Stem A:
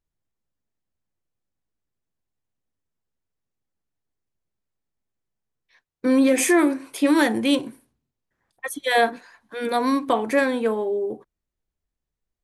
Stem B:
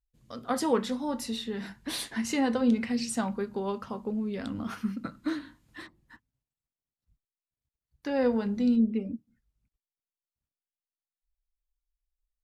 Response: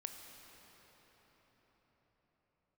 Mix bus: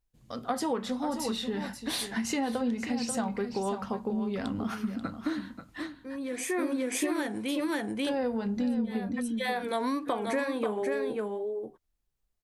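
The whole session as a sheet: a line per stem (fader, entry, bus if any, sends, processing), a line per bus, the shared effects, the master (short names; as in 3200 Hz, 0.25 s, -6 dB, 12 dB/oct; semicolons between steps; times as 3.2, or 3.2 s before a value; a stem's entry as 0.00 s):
-2.5 dB, 0.00 s, no send, echo send -6.5 dB, wow and flutter 86 cents; auto duck -18 dB, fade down 1.05 s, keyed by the second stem
+2.5 dB, 0.00 s, no send, echo send -11 dB, bell 760 Hz +5 dB 0.35 oct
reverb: off
echo: echo 0.536 s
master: compressor 5:1, threshold -27 dBFS, peak gain reduction 10 dB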